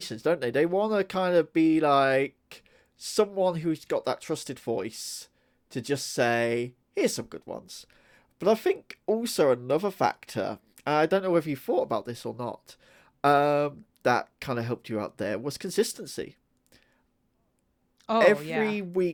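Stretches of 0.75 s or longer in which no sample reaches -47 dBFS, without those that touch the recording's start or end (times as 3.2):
16.83–18.01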